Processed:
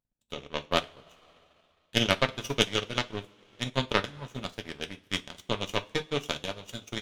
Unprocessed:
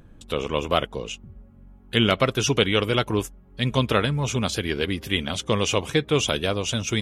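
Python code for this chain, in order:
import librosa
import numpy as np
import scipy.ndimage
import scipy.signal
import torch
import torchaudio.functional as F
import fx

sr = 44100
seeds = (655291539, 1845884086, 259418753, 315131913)

y = fx.power_curve(x, sr, exponent=2.0)
y = fx.rev_double_slope(y, sr, seeds[0], early_s=0.36, late_s=2.5, knee_db=-18, drr_db=3.0)
y = fx.transient(y, sr, attack_db=3, sustain_db=-8)
y = y * 10.0 ** (-1.5 / 20.0)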